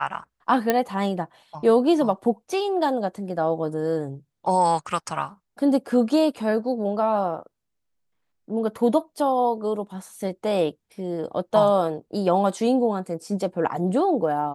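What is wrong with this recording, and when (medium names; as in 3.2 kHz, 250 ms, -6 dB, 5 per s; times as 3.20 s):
0.70 s: pop -6 dBFS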